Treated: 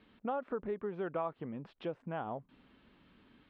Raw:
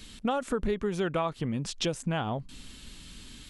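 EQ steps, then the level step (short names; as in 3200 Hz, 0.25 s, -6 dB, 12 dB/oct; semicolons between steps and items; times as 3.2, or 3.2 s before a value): band-pass 750 Hz, Q 0.6; air absorption 430 m; -4.0 dB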